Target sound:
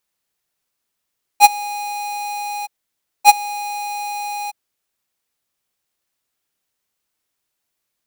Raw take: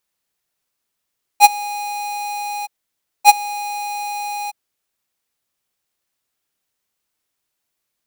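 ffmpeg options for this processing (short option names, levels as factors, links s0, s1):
-af "acrusher=bits=8:mode=log:mix=0:aa=0.000001"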